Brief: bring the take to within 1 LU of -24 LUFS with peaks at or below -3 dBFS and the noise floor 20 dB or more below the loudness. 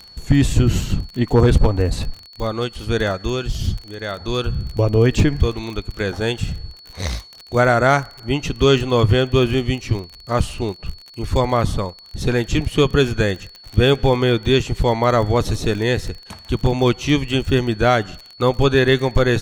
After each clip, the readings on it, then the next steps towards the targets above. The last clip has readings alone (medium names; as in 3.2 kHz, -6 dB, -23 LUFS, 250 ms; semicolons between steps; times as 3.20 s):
tick rate 34 per s; steady tone 4.4 kHz; tone level -41 dBFS; loudness -19.0 LUFS; peak level -4.0 dBFS; loudness target -24.0 LUFS
-> de-click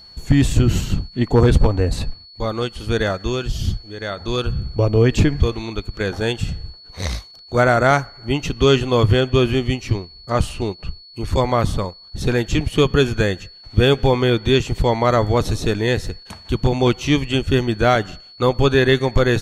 tick rate 0.10 per s; steady tone 4.4 kHz; tone level -41 dBFS
-> band-stop 4.4 kHz, Q 30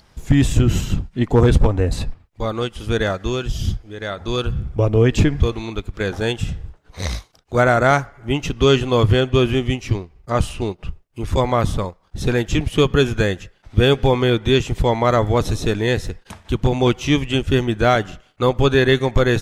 steady tone not found; loudness -19.0 LUFS; peak level -3.5 dBFS; loudness target -24.0 LUFS
-> trim -5 dB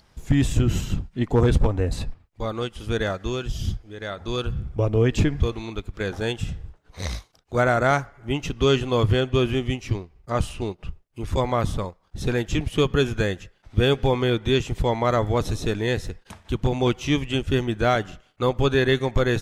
loudness -24.0 LUFS; peak level -8.5 dBFS; noise floor -61 dBFS